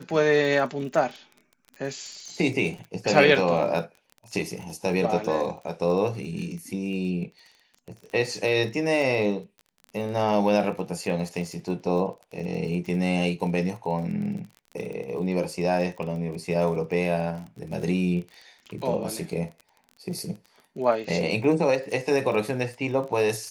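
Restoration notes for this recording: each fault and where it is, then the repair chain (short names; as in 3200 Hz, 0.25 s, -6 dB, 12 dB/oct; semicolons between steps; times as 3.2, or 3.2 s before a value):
crackle 30/s -34 dBFS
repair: de-click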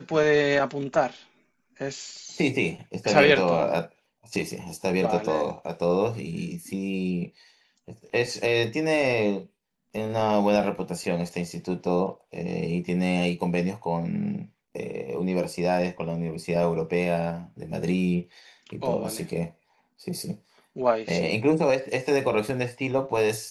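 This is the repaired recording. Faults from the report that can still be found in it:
none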